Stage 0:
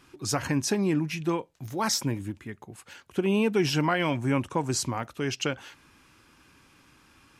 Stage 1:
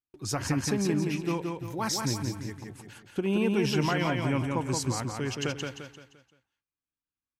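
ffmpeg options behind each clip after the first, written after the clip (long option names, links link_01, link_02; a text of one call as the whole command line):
ffmpeg -i in.wav -filter_complex "[0:a]agate=range=-41dB:threshold=-50dB:ratio=16:detection=peak,lowshelf=frequency=81:gain=10,asplit=2[link_01][link_02];[link_02]aecho=0:1:173|346|519|692|865:0.631|0.259|0.106|0.0435|0.0178[link_03];[link_01][link_03]amix=inputs=2:normalize=0,volume=-4dB" out.wav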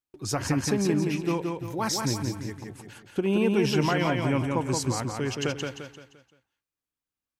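ffmpeg -i in.wav -af "equalizer=frequency=500:width_type=o:width=1.5:gain=2.5,volume=1.5dB" out.wav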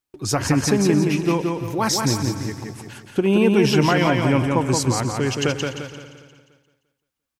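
ffmpeg -i in.wav -af "aecho=1:1:291|582|873:0.141|0.0579|0.0237,volume=7dB" out.wav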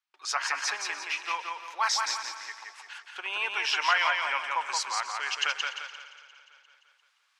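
ffmpeg -i in.wav -af "highpass=frequency=1000:width=0.5412,highpass=frequency=1000:width=1.3066,areverse,acompressor=mode=upward:threshold=-48dB:ratio=2.5,areverse,lowpass=4500" out.wav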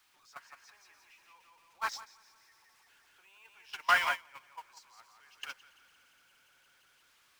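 ffmpeg -i in.wav -filter_complex "[0:a]aeval=exprs='val(0)+0.5*0.0376*sgn(val(0))':channel_layout=same,agate=range=-33dB:threshold=-21dB:ratio=16:detection=peak,acrossover=split=490|1800[link_01][link_02][link_03];[link_03]asoftclip=type=tanh:threshold=-28dB[link_04];[link_01][link_02][link_04]amix=inputs=3:normalize=0" out.wav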